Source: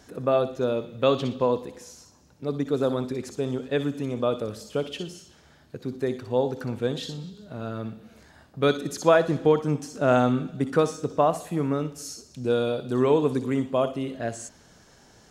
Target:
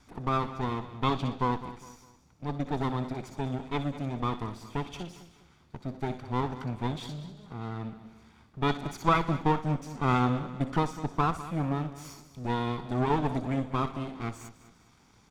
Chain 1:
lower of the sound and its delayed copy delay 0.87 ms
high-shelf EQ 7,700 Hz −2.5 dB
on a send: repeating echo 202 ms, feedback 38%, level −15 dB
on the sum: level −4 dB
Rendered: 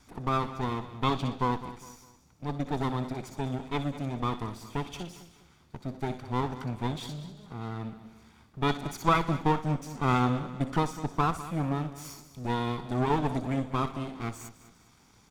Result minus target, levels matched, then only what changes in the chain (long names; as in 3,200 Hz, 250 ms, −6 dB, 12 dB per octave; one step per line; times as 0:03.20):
8,000 Hz band +3.5 dB
change: high-shelf EQ 7,700 Hz −11 dB